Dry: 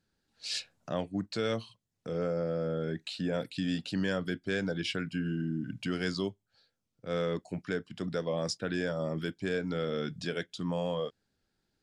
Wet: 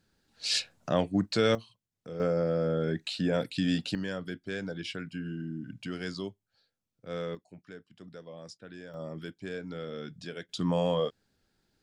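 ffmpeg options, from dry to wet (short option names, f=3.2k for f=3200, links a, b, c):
-af "asetnsamples=n=441:p=0,asendcmd='1.55 volume volume -5dB;2.2 volume volume 4dB;3.95 volume volume -4dB;7.35 volume volume -13.5dB;8.94 volume volume -6dB;10.49 volume volume 5dB',volume=6.5dB"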